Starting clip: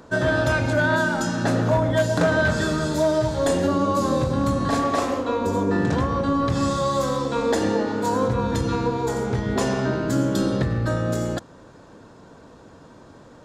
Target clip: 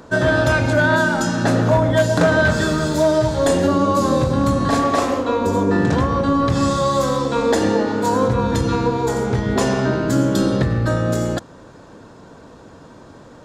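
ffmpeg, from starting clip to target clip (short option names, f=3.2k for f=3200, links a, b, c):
-filter_complex "[0:a]asettb=1/sr,asplit=3[a][b][c];[a]atrim=end=2.524[d];[b]atrim=start=2.52:end=3.05,asetpts=PTS-STARTPTS,afade=t=in:d=0.004:c=qsin,afade=t=out:st=0.526:d=0.004:c=qsin,aeval=exprs='sgn(val(0))*max(abs(val(0))-0.00376,0)':c=same[e];[c]atrim=start=3.046[f];[d][e]acrossfade=d=0.004:c1=hsin:c2=qsin[g];[g][f]acrossfade=d=0.004:c1=qsin:c2=hsin,volume=4.5dB"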